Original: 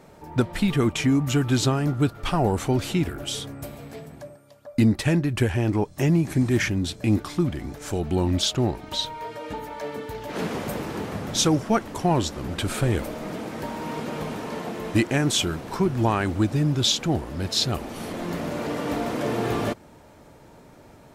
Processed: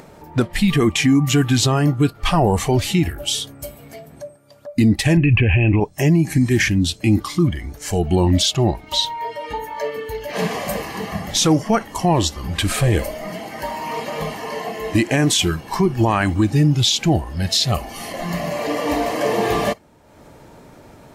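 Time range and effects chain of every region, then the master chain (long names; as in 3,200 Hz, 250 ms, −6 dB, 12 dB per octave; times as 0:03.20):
0:05.17–0:05.80: low-pass with resonance 2,600 Hz, resonance Q 14 + spectral tilt −2.5 dB per octave
whole clip: noise reduction from a noise print of the clip's start 12 dB; brickwall limiter −16.5 dBFS; upward compression, threshold −43 dBFS; level +9 dB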